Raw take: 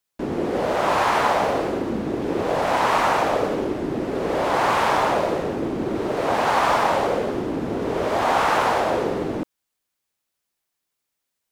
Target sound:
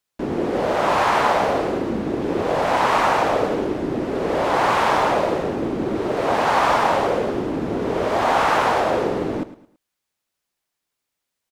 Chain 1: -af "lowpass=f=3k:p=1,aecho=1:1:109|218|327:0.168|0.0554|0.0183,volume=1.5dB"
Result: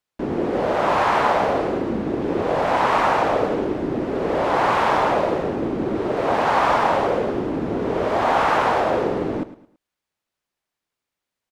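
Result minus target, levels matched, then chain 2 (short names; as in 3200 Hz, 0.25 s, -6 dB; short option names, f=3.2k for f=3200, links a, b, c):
8000 Hz band -5.5 dB
-af "lowpass=f=8.8k:p=1,aecho=1:1:109|218|327:0.168|0.0554|0.0183,volume=1.5dB"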